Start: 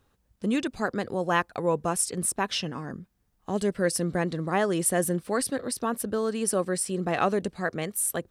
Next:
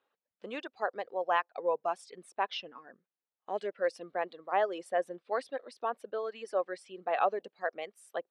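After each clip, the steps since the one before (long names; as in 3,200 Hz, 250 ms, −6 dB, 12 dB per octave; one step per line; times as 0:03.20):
Chebyshev band-pass filter 500–3,100 Hz, order 2
reverb reduction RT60 1.9 s
dynamic equaliser 740 Hz, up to +7 dB, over −41 dBFS, Q 1.2
level −6.5 dB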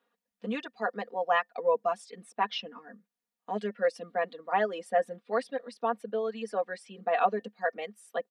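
comb filter 4.2 ms, depth 92%
hollow resonant body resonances 210/1,800 Hz, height 13 dB, ringing for 90 ms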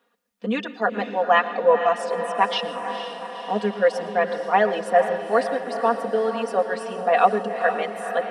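feedback delay with all-pass diffusion 477 ms, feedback 61%, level −9 dB
convolution reverb RT60 0.55 s, pre-delay 104 ms, DRR 14.5 dB
level +8.5 dB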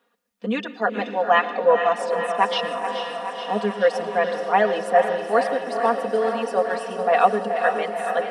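feedback echo with a high-pass in the loop 428 ms, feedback 74%, high-pass 310 Hz, level −10 dB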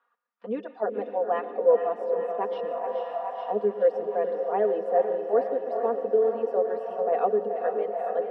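envelope filter 410–1,200 Hz, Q 2.6, down, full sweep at −20 dBFS
level +1.5 dB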